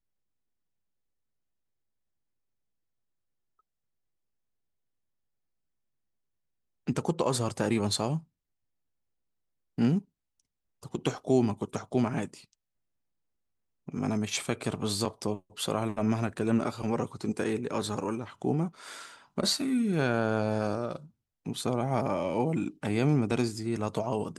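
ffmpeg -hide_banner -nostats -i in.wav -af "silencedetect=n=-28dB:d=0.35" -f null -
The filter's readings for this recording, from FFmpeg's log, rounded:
silence_start: 0.00
silence_end: 6.88 | silence_duration: 6.88
silence_start: 8.17
silence_end: 9.78 | silence_duration: 1.61
silence_start: 9.99
silence_end: 10.95 | silence_duration: 0.96
silence_start: 12.24
silence_end: 13.89 | silence_duration: 1.64
silence_start: 18.66
silence_end: 19.38 | silence_duration: 0.71
silence_start: 20.95
silence_end: 21.47 | silence_duration: 0.51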